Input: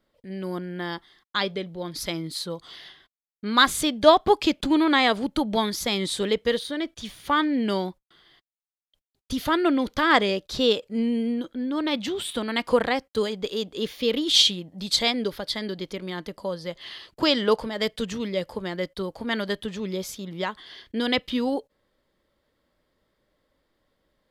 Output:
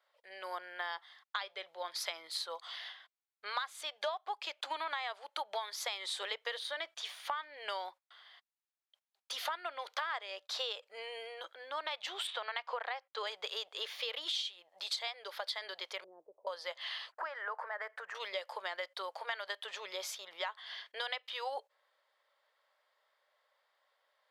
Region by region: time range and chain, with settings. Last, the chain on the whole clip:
0:12.27–0:13.27: band-pass filter 280–7,800 Hz + high-frequency loss of the air 91 metres
0:16.04–0:16.47: spike at every zero crossing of −34 dBFS + inverse Chebyshev low-pass filter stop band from 2,600 Hz, stop band 80 dB
0:17.12–0:18.15: downward compressor 4 to 1, threshold −33 dBFS + high shelf with overshoot 2,400 Hz −13 dB, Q 3
whole clip: inverse Chebyshev high-pass filter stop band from 260 Hz, stop band 50 dB; high-shelf EQ 5,500 Hz −11 dB; downward compressor 12 to 1, threshold −36 dBFS; level +1.5 dB

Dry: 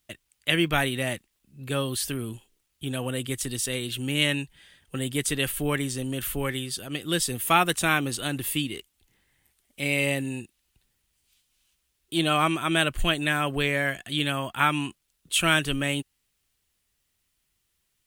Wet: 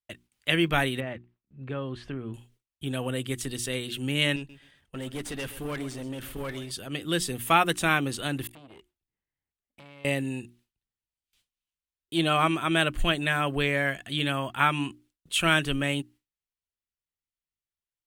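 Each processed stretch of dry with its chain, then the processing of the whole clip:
0:01.00–0:02.34: low-pass filter 2,000 Hz + downward compressor 2 to 1, threshold −31 dBFS
0:04.36–0:06.71: high-shelf EQ 4,500 Hz −3.5 dB + tube saturation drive 28 dB, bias 0.6 + feedback echo at a low word length 130 ms, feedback 35%, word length 9 bits, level −13 dB
0:08.47–0:10.05: high-shelf EQ 2,800 Hz −10.5 dB + downward compressor 8 to 1, threshold −41 dBFS + saturating transformer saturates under 1,600 Hz
whole clip: mains-hum notches 60/120/180/240/300/360 Hz; noise gate with hold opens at −53 dBFS; high-shelf EQ 5,100 Hz −7 dB

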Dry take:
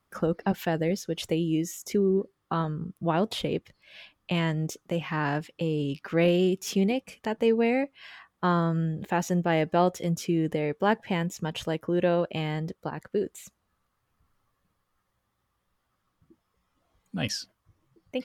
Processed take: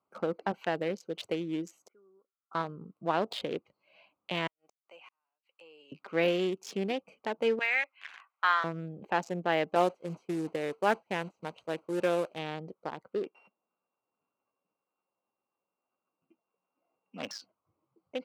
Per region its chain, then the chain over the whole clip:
0:01.88–0:02.55: resonant band-pass 1,400 Hz, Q 11 + high-frequency loss of the air 490 metres
0:04.47–0:05.92: high-pass filter 1,500 Hz + gate with flip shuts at −28 dBFS, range −42 dB + gain into a clipping stage and back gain 34 dB
0:07.59–0:08.64: high-pass filter 1,200 Hz + parametric band 1,900 Hz +11 dB 1.6 octaves
0:09.75–0:12.39: linear delta modulator 64 kbit/s, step −35 dBFS + downward expander −28 dBFS + highs frequency-modulated by the lows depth 0.16 ms
0:13.23–0:17.31: samples sorted by size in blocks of 16 samples + band-pass filter 210–3,000 Hz
whole clip: adaptive Wiener filter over 25 samples; meter weighting curve A; de-essing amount 90%

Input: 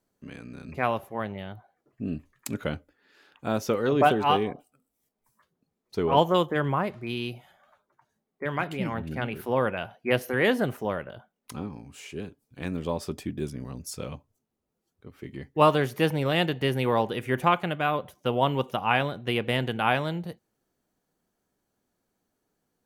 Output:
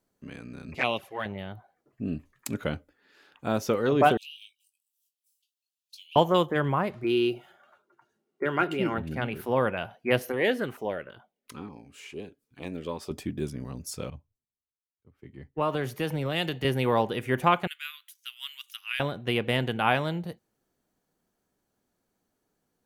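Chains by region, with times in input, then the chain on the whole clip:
0:00.75–0:01.26: meter weighting curve D + flanger swept by the level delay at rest 9.1 ms, full sweep at −21 dBFS
0:04.17–0:06.16: Butterworth high-pass 2,600 Hz 96 dB per octave + downward compressor 10 to 1, threshold −41 dBFS + double-tracking delay 20 ms −6.5 dB
0:07.04–0:08.98: running median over 3 samples + high-pass filter 150 Hz 6 dB per octave + hollow resonant body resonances 360/1,400/2,800 Hz, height 13 dB
0:10.32–0:13.11: bass and treble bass −9 dB, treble −5 dB + auto-filter notch saw down 2.2 Hz 490–1,800 Hz
0:14.10–0:16.65: downward compressor 5 to 1, threshold −25 dBFS + multiband upward and downward expander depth 100%
0:17.67–0:19.00: Bessel high-pass filter 2,900 Hz, order 8 + high-shelf EQ 5,600 Hz +6.5 dB
whole clip: no processing

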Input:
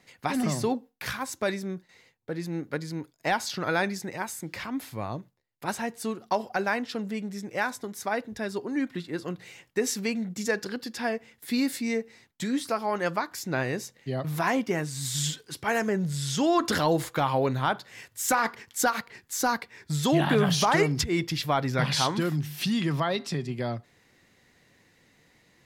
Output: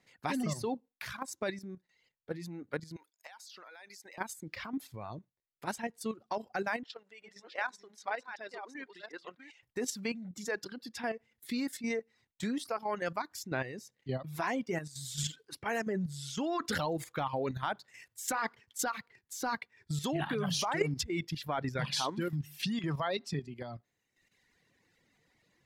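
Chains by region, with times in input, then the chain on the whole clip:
0:02.96–0:04.18: high-pass filter 580 Hz + high-shelf EQ 2,100 Hz +8 dB + downward compressor 4 to 1, threshold −40 dBFS
0:06.83–0:09.63: delay that plays each chunk backwards 382 ms, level −5.5 dB + band-pass filter 630–4,800 Hz
whole clip: reverb reduction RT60 1.3 s; high-shelf EQ 9,800 Hz −4.5 dB; output level in coarse steps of 10 dB; level −2.5 dB

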